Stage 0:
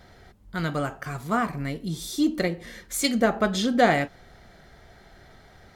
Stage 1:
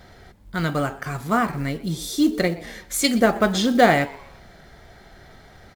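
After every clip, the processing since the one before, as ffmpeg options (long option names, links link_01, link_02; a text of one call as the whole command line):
ffmpeg -i in.wav -filter_complex "[0:a]acrusher=bits=7:mode=log:mix=0:aa=0.000001,asplit=4[link_01][link_02][link_03][link_04];[link_02]adelay=123,afreqshift=130,volume=-21dB[link_05];[link_03]adelay=246,afreqshift=260,volume=-29.2dB[link_06];[link_04]adelay=369,afreqshift=390,volume=-37.4dB[link_07];[link_01][link_05][link_06][link_07]amix=inputs=4:normalize=0,volume=4dB" out.wav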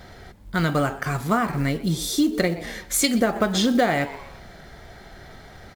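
ffmpeg -i in.wav -af "acompressor=threshold=-20dB:ratio=6,volume=3.5dB" out.wav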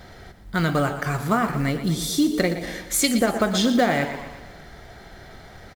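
ffmpeg -i in.wav -af "aecho=1:1:118|236|354|472|590|708:0.251|0.136|0.0732|0.0396|0.0214|0.0115" out.wav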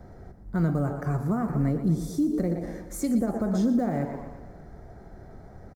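ffmpeg -i in.wav -filter_complex "[0:a]firequalizer=gain_entry='entry(220,0);entry(3100,-28);entry(5500,-16)':delay=0.05:min_phase=1,acrossover=split=210|5600[link_01][link_02][link_03];[link_02]alimiter=limit=-21.5dB:level=0:latency=1:release=87[link_04];[link_01][link_04][link_03]amix=inputs=3:normalize=0" out.wav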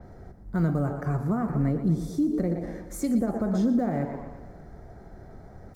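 ffmpeg -i in.wav -af "areverse,acompressor=mode=upward:threshold=-46dB:ratio=2.5,areverse,adynamicequalizer=threshold=0.00141:dfrequency=4700:dqfactor=0.7:tfrequency=4700:tqfactor=0.7:attack=5:release=100:ratio=0.375:range=3:mode=cutabove:tftype=highshelf" out.wav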